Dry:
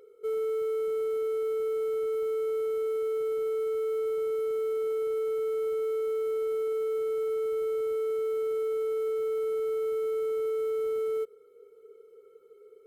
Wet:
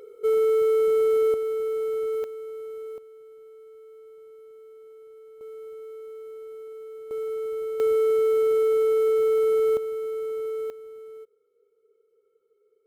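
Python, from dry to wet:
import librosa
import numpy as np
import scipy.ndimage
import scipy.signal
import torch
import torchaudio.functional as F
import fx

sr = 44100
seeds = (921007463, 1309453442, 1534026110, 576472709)

y = fx.gain(x, sr, db=fx.steps((0.0, 9.0), (1.34, 2.5), (2.24, -7.0), (2.98, -18.0), (5.41, -10.5), (7.11, -0.5), (7.8, 8.5), (9.77, -0.5), (10.7, -12.5)))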